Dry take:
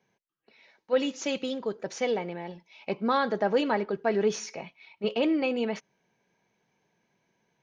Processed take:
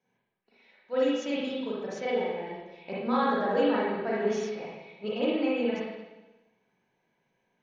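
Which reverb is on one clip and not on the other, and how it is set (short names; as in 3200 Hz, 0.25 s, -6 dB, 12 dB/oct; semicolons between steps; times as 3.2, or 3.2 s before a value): spring tank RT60 1.1 s, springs 38/42/59 ms, chirp 20 ms, DRR -7.5 dB; gain -9 dB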